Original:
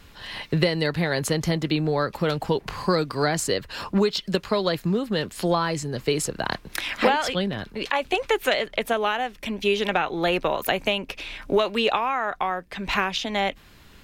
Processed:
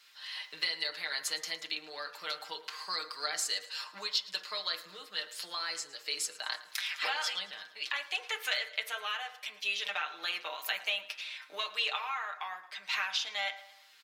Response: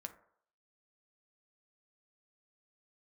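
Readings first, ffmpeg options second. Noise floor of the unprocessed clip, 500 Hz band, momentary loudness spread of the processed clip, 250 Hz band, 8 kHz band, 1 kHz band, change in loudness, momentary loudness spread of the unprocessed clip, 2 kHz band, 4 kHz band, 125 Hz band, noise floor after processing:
-50 dBFS, -23.5 dB, 8 LU, -34.5 dB, -5.0 dB, -14.0 dB, -10.0 dB, 6 LU, -7.0 dB, -4.0 dB, under -40 dB, -57 dBFS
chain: -filter_complex "[0:a]highpass=1400,equalizer=f=4700:t=o:w=0.98:g=6.5,aecho=1:1:6.5:0.68,aecho=1:1:111|222|333|444:0.106|0.0561|0.0298|0.0158[s0];[1:a]atrim=start_sample=2205[s1];[s0][s1]afir=irnorm=-1:irlink=0,volume=0.596"

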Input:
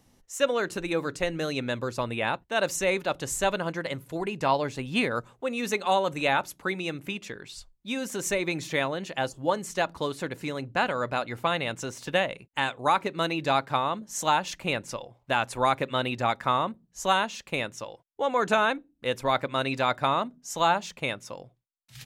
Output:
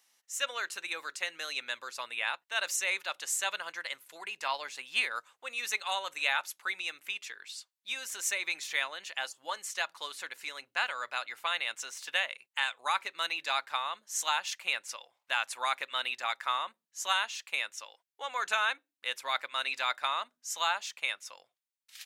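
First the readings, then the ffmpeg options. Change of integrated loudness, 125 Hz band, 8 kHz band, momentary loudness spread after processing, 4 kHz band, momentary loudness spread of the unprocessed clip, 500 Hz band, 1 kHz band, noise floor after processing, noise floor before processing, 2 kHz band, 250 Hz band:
-5.0 dB, under -35 dB, 0.0 dB, 10 LU, 0.0 dB, 9 LU, -17.0 dB, -8.0 dB, under -85 dBFS, -67 dBFS, -1.5 dB, -29.0 dB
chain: -af "highpass=1500"

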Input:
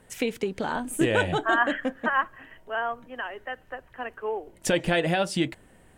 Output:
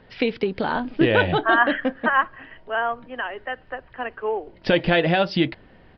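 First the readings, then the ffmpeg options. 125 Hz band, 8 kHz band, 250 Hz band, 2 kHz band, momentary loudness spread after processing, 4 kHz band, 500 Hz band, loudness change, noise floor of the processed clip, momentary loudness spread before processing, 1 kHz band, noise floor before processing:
+5.0 dB, under -20 dB, +5.0 dB, +5.0 dB, 13 LU, +5.0 dB, +5.0 dB, +5.0 dB, -52 dBFS, 13 LU, +5.0 dB, -57 dBFS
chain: -af "aresample=11025,aresample=44100,volume=1.78"

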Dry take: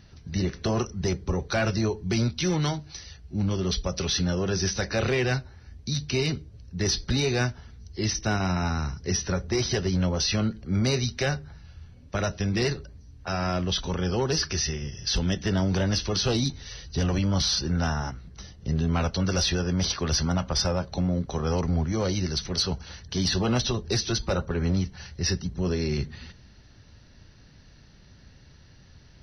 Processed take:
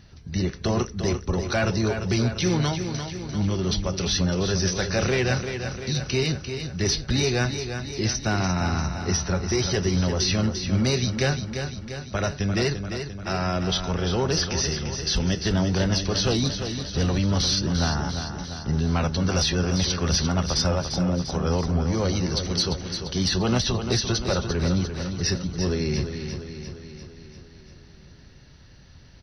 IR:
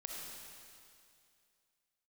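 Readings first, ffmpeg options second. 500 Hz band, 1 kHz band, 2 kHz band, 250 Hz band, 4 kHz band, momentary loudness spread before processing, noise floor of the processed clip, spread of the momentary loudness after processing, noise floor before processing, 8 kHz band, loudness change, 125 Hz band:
+2.5 dB, +2.5 dB, +2.5 dB, +2.5 dB, +2.5 dB, 8 LU, -48 dBFS, 8 LU, -52 dBFS, no reading, +2.0 dB, +2.5 dB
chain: -af "aecho=1:1:346|692|1038|1384|1730|2076|2422:0.398|0.235|0.139|0.0818|0.0482|0.0285|0.0168,volume=1.19"

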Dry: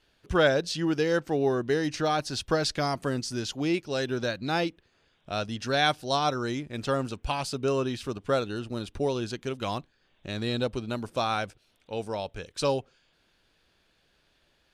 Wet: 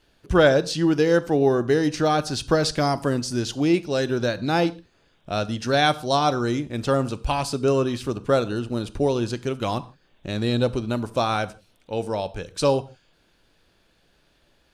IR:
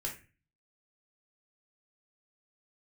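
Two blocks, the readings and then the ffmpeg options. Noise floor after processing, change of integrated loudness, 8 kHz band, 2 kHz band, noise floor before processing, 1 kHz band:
-63 dBFS, +6.0 dB, +4.5 dB, +3.5 dB, -69 dBFS, +5.0 dB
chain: -filter_complex "[0:a]equalizer=f=2800:w=0.4:g=-4.5,asplit=2[s0][s1];[1:a]atrim=start_sample=2205,atrim=end_sample=3969,asetrate=23373,aresample=44100[s2];[s1][s2]afir=irnorm=-1:irlink=0,volume=0.141[s3];[s0][s3]amix=inputs=2:normalize=0,volume=2"

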